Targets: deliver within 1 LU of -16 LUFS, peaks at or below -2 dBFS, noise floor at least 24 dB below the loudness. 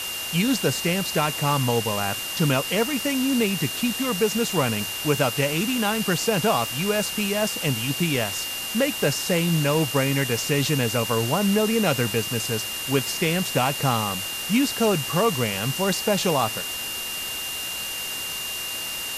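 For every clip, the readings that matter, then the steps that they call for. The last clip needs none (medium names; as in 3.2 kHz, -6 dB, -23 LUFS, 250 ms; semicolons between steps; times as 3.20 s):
steady tone 2.8 kHz; tone level -31 dBFS; noise floor -31 dBFS; noise floor target -47 dBFS; loudness -23.0 LUFS; peak level -8.0 dBFS; loudness target -16.0 LUFS
-> band-stop 2.8 kHz, Q 30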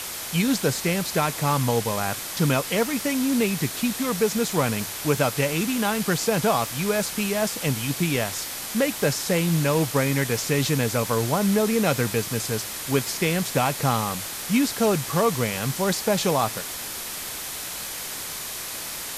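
steady tone not found; noise floor -33 dBFS; noise floor target -48 dBFS
-> noise reduction 15 dB, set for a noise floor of -33 dBFS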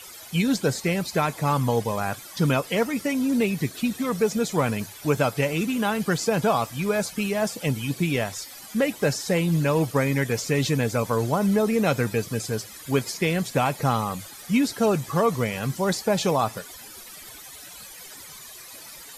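noise floor -43 dBFS; noise floor target -49 dBFS
-> noise reduction 6 dB, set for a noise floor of -43 dBFS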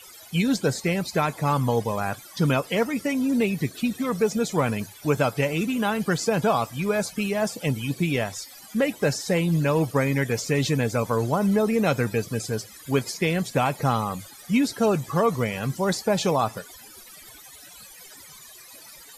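noise floor -46 dBFS; noise floor target -49 dBFS
-> noise reduction 6 dB, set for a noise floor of -46 dBFS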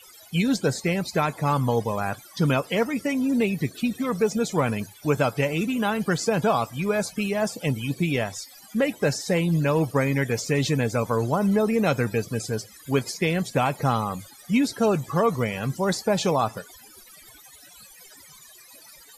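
noise floor -49 dBFS; loudness -24.5 LUFS; peak level -9.0 dBFS; loudness target -16.0 LUFS
-> trim +8.5 dB; peak limiter -2 dBFS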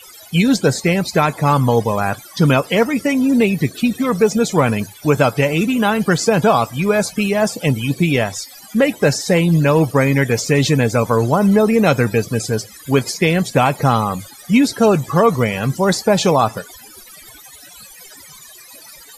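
loudness -16.0 LUFS; peak level -2.0 dBFS; noise floor -41 dBFS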